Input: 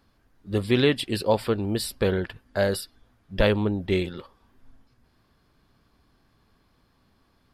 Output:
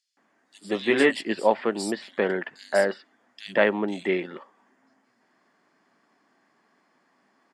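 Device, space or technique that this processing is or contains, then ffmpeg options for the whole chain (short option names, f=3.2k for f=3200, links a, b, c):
television speaker: -filter_complex "[0:a]asettb=1/sr,asplit=3[a][b][c];[a]atrim=end=0.714[d];[b]atrim=start=0.71:end=1.16,asetpts=PTS-STARTPTS,afade=t=in:d=0.004:c=qsin,afade=t=out:st=0.446:d=0.004:c=qsin,asplit=2[e][f];[f]adelay=18,volume=-5dB[g];[e][g]amix=inputs=2:normalize=0,atrim=end_sample=19845[h];[c]atrim=start=1.156[i];[d][h]acrossfade=d=0.004:c1=hsin:c2=qsin[j];[j][i]acrossfade=d=0.004:c1=qsin:c2=hsin,highpass=f=150:p=1,highpass=f=200:w=0.5412,highpass=f=200:w=1.3066,equalizer=f=490:t=q:w=4:g=-4,equalizer=f=1.9k:t=q:w=4:g=9,equalizer=f=3.9k:t=q:w=4:g=-6,equalizer=f=7.1k:t=q:w=4:g=5,lowpass=f=8.6k:w=0.5412,lowpass=f=8.6k:w=1.3066,equalizer=f=700:w=1.2:g=5,acrossover=split=3600[k][l];[k]adelay=170[m];[m][l]amix=inputs=2:normalize=0"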